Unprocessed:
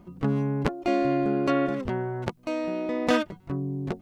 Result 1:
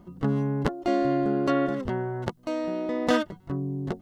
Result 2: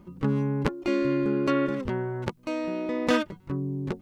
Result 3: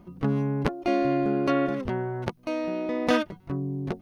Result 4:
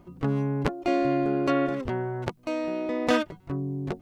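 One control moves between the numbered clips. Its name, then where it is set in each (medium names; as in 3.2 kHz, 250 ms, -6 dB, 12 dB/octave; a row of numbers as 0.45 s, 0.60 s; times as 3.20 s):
band-stop, frequency: 2.4 kHz, 700 Hz, 7.5 kHz, 200 Hz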